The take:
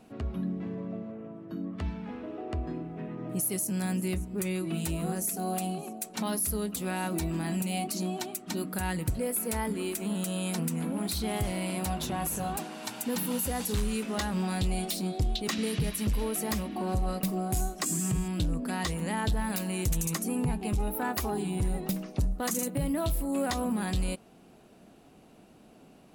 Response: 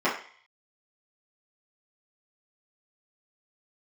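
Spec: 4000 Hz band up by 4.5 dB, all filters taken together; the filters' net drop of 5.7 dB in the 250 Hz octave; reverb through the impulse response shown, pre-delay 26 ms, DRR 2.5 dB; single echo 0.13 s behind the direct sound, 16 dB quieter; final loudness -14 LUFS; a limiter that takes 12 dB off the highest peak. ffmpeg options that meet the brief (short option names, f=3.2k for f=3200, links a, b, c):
-filter_complex "[0:a]equalizer=f=250:t=o:g=-8.5,equalizer=f=4k:t=o:g=5.5,alimiter=level_in=4.5dB:limit=-24dB:level=0:latency=1,volume=-4.5dB,aecho=1:1:130:0.158,asplit=2[a][b];[1:a]atrim=start_sample=2205,adelay=26[c];[b][c]afir=irnorm=-1:irlink=0,volume=-17.5dB[d];[a][d]amix=inputs=2:normalize=0,volume=22.5dB"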